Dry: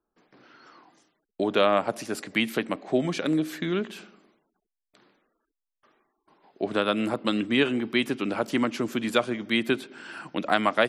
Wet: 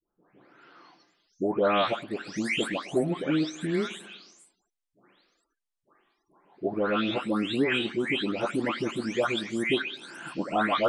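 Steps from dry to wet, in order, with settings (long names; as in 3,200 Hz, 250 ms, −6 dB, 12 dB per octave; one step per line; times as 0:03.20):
every frequency bin delayed by itself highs late, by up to 484 ms
downsampling to 22,050 Hz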